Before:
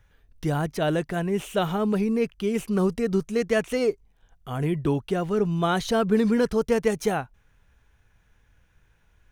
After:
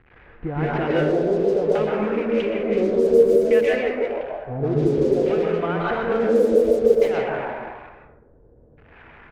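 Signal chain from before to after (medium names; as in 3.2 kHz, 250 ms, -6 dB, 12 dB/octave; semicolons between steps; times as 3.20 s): zero-crossing glitches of -18 dBFS; low-pass 5.7 kHz; peaking EQ 190 Hz -9 dB 0.36 oct; band-stop 610 Hz, Q 12; on a send: frequency-shifting echo 155 ms, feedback 53%, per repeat +93 Hz, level -10 dB; on the sum: dynamic bell 450 Hz, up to +4 dB, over -33 dBFS, Q 1.4; compression 12:1, threshold -27 dBFS, peak gain reduction 14.5 dB; LFO low-pass square 0.57 Hz 500–2400 Hz; in parallel at -8.5 dB: word length cut 6-bit, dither none; on the sum: plate-style reverb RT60 1.1 s, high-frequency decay 0.4×, pre-delay 110 ms, DRR -2.5 dB; level-controlled noise filter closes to 350 Hz, open at -12.5 dBFS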